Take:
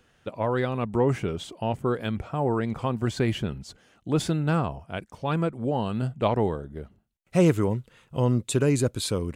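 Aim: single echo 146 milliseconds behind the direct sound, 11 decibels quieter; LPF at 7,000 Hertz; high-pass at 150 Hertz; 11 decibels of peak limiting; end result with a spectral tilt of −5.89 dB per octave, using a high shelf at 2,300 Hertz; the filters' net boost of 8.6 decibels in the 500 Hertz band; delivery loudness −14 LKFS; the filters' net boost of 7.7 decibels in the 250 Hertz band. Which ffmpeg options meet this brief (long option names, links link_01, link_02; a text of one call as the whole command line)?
ffmpeg -i in.wav -af "highpass=150,lowpass=7000,equalizer=frequency=250:width_type=o:gain=8.5,equalizer=frequency=500:width_type=o:gain=7.5,highshelf=frequency=2300:gain=6.5,alimiter=limit=-12.5dB:level=0:latency=1,aecho=1:1:146:0.282,volume=10dB" out.wav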